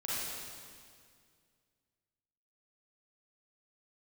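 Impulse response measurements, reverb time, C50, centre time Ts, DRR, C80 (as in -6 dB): 2.1 s, -5.5 dB, 154 ms, -9.0 dB, -2.0 dB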